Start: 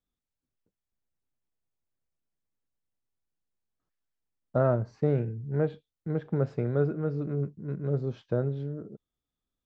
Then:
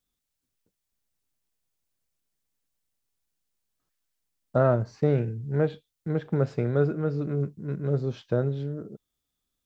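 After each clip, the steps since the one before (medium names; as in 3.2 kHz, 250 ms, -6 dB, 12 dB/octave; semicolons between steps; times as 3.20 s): treble shelf 2.5 kHz +9 dB; trim +2.5 dB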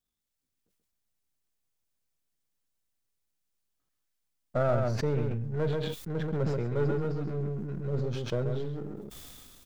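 partial rectifier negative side -7 dB; delay 133 ms -6.5 dB; decay stretcher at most 24 dB/s; trim -3 dB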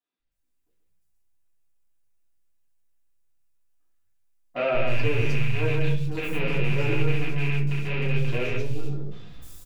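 rattle on loud lows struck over -32 dBFS, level -21 dBFS; three bands offset in time mids, lows, highs 190/310 ms, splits 190/4400 Hz; reverberation RT60 0.35 s, pre-delay 3 ms, DRR -7 dB; trim -7 dB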